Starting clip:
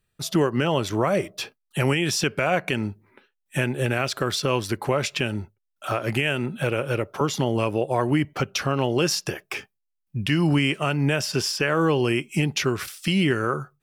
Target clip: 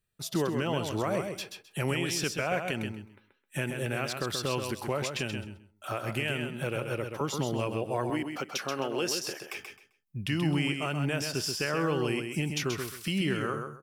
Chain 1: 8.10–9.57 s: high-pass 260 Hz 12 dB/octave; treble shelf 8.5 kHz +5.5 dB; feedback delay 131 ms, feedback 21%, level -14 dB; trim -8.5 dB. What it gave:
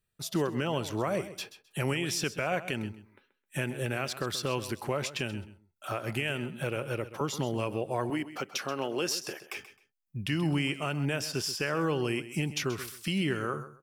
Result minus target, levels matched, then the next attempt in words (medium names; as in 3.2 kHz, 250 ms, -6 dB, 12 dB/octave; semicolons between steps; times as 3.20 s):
echo-to-direct -8 dB
8.10–9.57 s: high-pass 260 Hz 12 dB/octave; treble shelf 8.5 kHz +5.5 dB; feedback delay 131 ms, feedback 21%, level -6 dB; trim -8.5 dB